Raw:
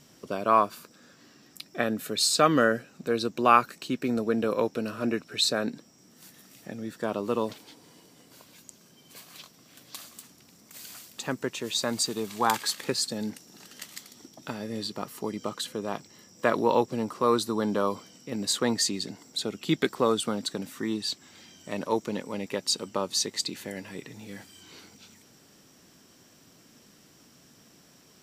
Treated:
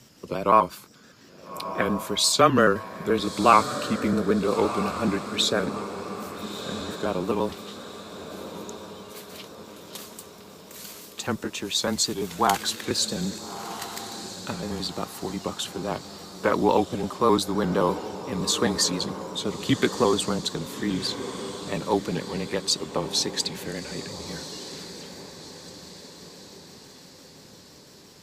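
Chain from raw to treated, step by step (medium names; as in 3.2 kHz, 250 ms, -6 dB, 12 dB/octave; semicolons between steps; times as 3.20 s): pitch shift switched off and on -1.5 st, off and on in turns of 86 ms; frequency shift -19 Hz; echo that smears into a reverb 1314 ms, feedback 52%, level -11 dB; trim +3.5 dB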